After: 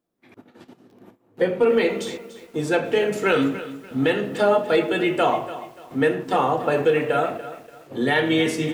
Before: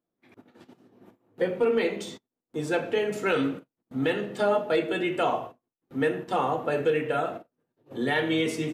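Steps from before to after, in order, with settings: bit-crushed delay 290 ms, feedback 35%, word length 8-bit, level -14 dB; trim +5.5 dB

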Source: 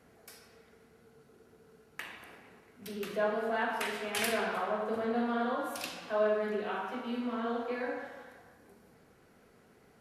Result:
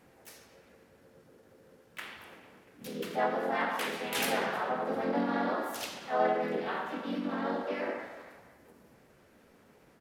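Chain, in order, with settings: harmony voices -4 st -6 dB, +3 st 0 dB, +5 st -10 dB; endings held to a fixed fall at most 140 dB/s; trim -2.5 dB

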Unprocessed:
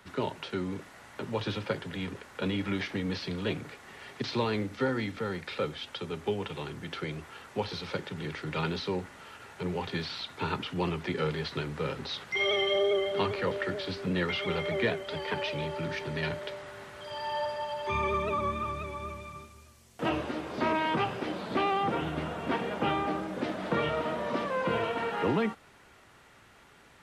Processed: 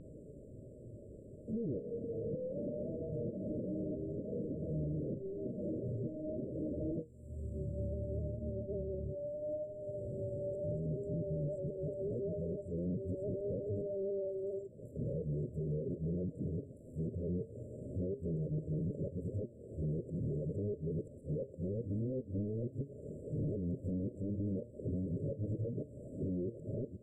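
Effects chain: reverse the whole clip; compression 10:1, threshold -42 dBFS, peak gain reduction 19 dB; flange 0.43 Hz, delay 6.3 ms, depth 2.7 ms, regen +80%; vibrato 0.75 Hz 40 cents; sine folder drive 9 dB, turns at -35 dBFS; dynamic bell 110 Hz, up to +7 dB, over -57 dBFS, Q 1.1; hard clipper -34.5 dBFS, distortion -18 dB; brick-wall FIR band-stop 640–7300 Hz; distance through air 180 m; trim +2 dB

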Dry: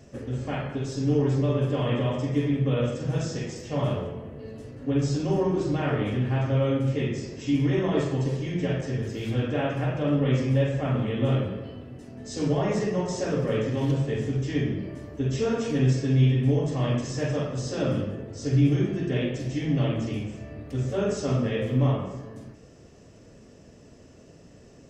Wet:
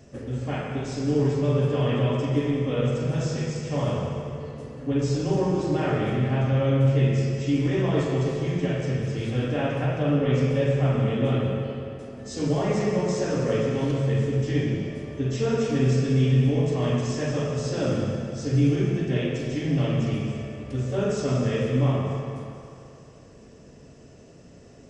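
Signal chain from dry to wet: on a send at -3 dB: reverberation RT60 2.8 s, pre-delay 77 ms; on the sum: resampled via 22.05 kHz

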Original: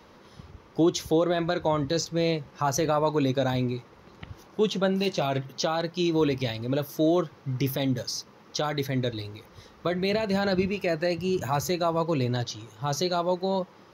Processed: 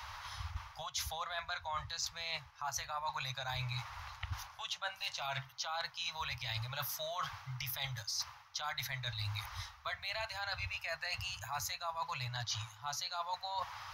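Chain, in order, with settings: inverse Chebyshev band-stop 200–410 Hz, stop band 60 dB; reverse; compression 12:1, threshold -46 dBFS, peak gain reduction 22 dB; reverse; trim +9.5 dB

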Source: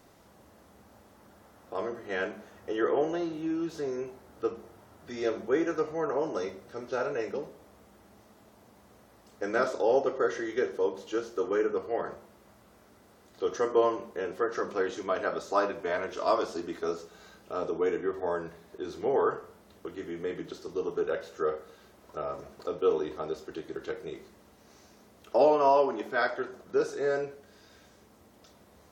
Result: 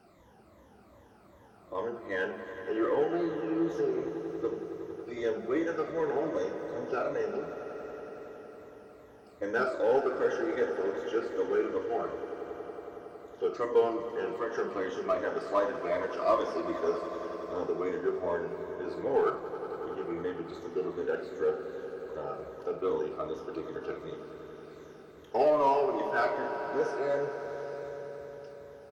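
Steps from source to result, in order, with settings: drifting ripple filter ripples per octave 1.1, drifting -2.6 Hz, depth 14 dB; treble shelf 3.5 kHz -10.5 dB; in parallel at -7 dB: hard clipper -25.5 dBFS, distortion -7 dB; on the sum: doubling 48 ms -12.5 dB; echo with a slow build-up 92 ms, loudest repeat 5, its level -15.5 dB; trim -6 dB

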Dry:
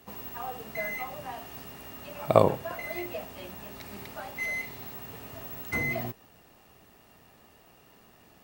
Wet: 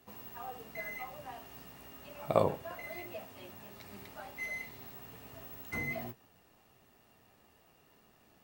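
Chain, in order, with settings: flange 0.29 Hz, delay 7.8 ms, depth 8.5 ms, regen -48%; trim -3.5 dB

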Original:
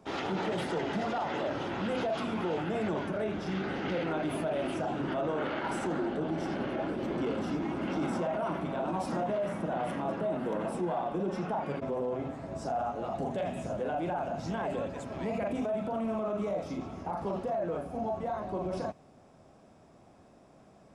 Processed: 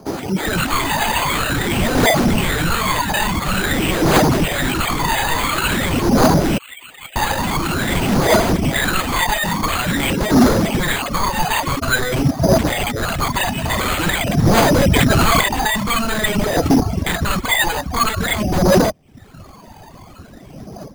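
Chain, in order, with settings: reverb removal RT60 0.5 s; 6.58–7.16 s: steep high-pass 2.7 kHz 96 dB/octave; reverb removal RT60 0.91 s; level rider gain up to 15.5 dB; wavefolder -21 dBFS; phaser 0.48 Hz, delay 1.2 ms, feedback 74%; 13.55–14.10 s: flutter echo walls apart 11.8 m, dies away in 0.73 s; careless resampling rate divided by 8×, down none, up hold; 14.62–15.41 s: level flattener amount 100%; trim +5 dB

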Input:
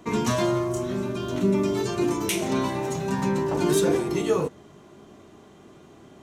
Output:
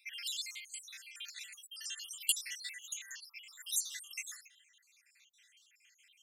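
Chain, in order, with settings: random holes in the spectrogram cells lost 72%; steep high-pass 1.9 kHz 48 dB/octave; trim +1.5 dB

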